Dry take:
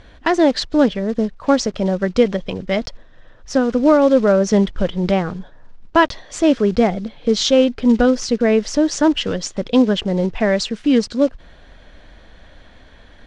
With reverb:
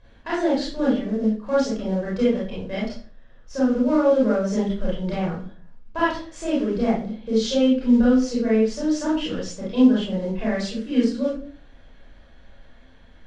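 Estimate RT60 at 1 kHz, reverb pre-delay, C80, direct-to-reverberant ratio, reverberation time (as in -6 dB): 0.40 s, 25 ms, 8.0 dB, -8.0 dB, 0.40 s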